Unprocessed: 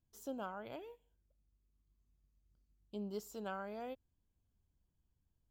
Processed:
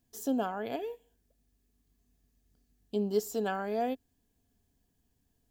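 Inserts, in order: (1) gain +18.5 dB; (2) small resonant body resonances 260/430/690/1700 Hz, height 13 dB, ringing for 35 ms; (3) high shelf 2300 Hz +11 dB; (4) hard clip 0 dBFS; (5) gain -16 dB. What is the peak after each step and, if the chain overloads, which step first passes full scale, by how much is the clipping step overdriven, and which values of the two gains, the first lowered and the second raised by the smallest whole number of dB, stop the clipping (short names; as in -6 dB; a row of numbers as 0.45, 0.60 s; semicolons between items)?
-12.5, -2.5, -2.0, -2.0, -18.0 dBFS; no overload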